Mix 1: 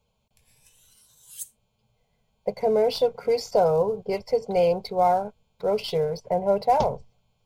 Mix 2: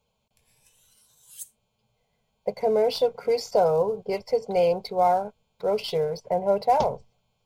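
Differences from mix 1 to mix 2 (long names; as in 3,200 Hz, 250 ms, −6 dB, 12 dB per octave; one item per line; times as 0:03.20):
background: add Chebyshev high-pass with heavy ripple 180 Hz, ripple 3 dB
master: add low-shelf EQ 150 Hz −6.5 dB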